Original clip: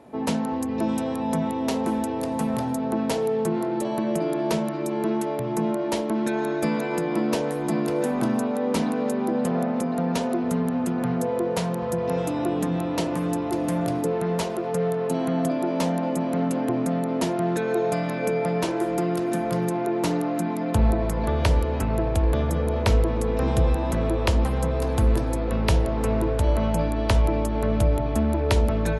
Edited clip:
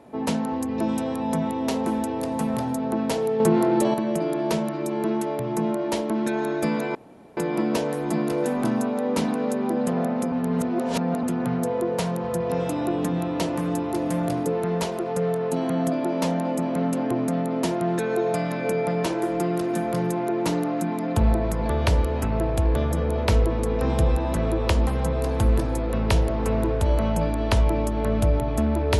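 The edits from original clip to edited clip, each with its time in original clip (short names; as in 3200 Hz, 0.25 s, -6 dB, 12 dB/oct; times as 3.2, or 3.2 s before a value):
3.4–3.94 gain +6 dB
6.95 insert room tone 0.42 s
9.9–10.81 reverse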